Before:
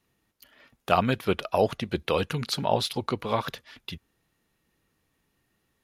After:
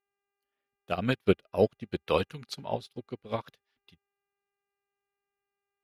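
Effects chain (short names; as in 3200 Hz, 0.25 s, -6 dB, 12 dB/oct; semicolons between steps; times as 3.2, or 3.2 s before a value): rotary speaker horn 5 Hz, later 0.7 Hz, at 0.47; buzz 400 Hz, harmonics 7, -58 dBFS -3 dB/oct; upward expander 2.5:1, over -44 dBFS; gain +4 dB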